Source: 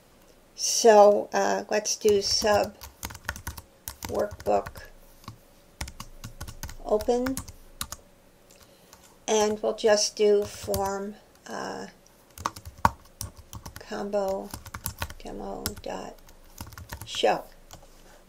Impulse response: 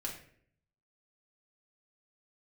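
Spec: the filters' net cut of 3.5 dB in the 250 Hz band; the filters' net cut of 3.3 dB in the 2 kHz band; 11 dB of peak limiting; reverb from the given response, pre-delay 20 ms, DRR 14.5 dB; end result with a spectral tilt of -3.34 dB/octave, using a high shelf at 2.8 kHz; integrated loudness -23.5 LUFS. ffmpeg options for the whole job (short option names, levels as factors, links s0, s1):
-filter_complex "[0:a]equalizer=f=250:t=o:g=-4.5,equalizer=f=2000:t=o:g=-6,highshelf=f=2800:g=4,alimiter=limit=0.188:level=0:latency=1,asplit=2[s0][s1];[1:a]atrim=start_sample=2205,adelay=20[s2];[s1][s2]afir=irnorm=-1:irlink=0,volume=0.188[s3];[s0][s3]amix=inputs=2:normalize=0,volume=1.78"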